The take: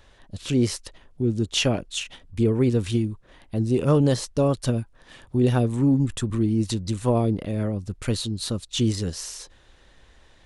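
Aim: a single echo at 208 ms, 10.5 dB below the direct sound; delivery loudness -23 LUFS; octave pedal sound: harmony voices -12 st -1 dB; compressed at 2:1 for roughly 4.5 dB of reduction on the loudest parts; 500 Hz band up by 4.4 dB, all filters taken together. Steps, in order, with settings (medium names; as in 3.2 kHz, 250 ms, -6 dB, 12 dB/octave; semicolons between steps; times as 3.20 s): peaking EQ 500 Hz +5.5 dB; compression 2:1, threshold -21 dBFS; delay 208 ms -10.5 dB; harmony voices -12 st -1 dB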